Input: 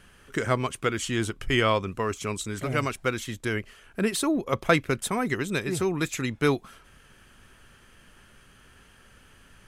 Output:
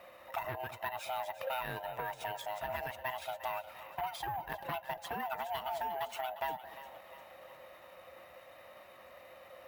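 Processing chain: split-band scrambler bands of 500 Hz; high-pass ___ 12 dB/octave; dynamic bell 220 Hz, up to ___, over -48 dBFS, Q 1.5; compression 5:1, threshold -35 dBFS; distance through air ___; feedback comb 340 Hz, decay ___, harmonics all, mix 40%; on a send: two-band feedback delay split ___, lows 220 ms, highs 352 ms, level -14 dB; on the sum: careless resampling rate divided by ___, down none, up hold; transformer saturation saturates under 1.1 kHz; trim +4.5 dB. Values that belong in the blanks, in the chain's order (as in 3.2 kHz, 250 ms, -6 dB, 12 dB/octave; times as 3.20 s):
68 Hz, -3 dB, 150 m, 0.18 s, 720 Hz, 3×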